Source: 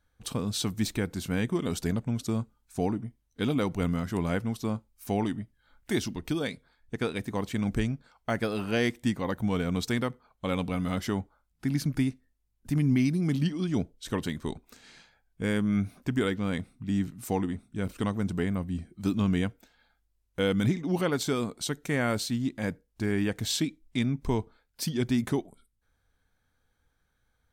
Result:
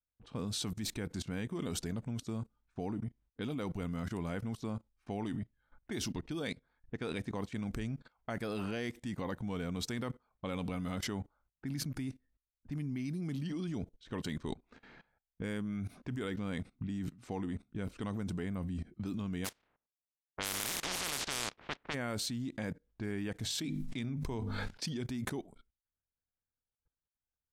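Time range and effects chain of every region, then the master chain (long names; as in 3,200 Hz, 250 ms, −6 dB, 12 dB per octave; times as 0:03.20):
0:19.44–0:21.93: compressing power law on the bin magnitudes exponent 0.11 + low-pass that shuts in the quiet parts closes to 910 Hz, open at −22 dBFS
0:23.44–0:24.86: mains-hum notches 50/100/150/200/250 Hz + level that may fall only so fast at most 38 dB per second
whole clip: low-pass that shuts in the quiet parts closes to 1,300 Hz, open at −26 dBFS; downward expander −60 dBFS; output level in coarse steps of 20 dB; level +3 dB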